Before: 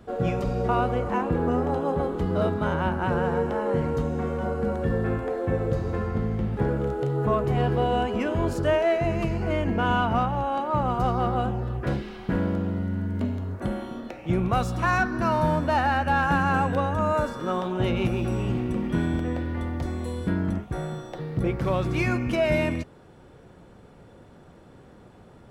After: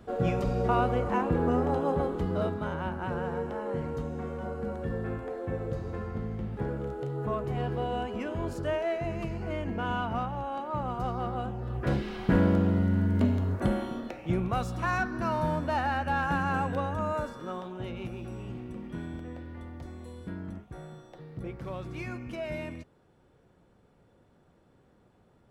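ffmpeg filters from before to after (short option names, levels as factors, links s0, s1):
-af "volume=2.66,afade=t=out:st=1.92:d=0.77:silence=0.501187,afade=t=in:st=11.58:d=0.63:silence=0.298538,afade=t=out:st=13.55:d=0.93:silence=0.375837,afade=t=out:st=16.9:d=0.95:silence=0.446684"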